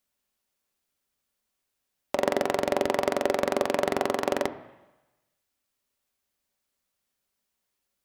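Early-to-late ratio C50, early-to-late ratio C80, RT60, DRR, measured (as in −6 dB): 14.0 dB, 16.0 dB, 1.1 s, 8.5 dB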